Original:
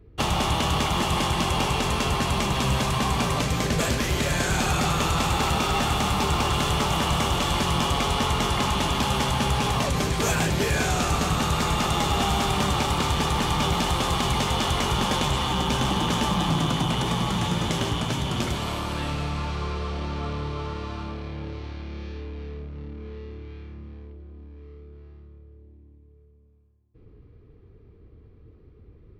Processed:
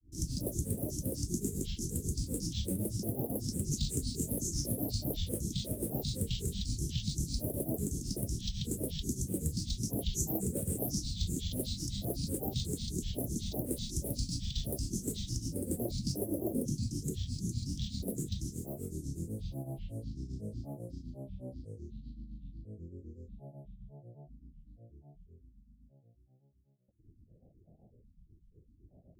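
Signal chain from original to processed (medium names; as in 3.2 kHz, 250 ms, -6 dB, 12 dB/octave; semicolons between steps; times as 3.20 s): Chebyshev band-stop 350–6200 Hz, order 4; bass shelf 470 Hz -7.5 dB; granulator 181 ms, grains 8 per s, pitch spread up and down by 12 st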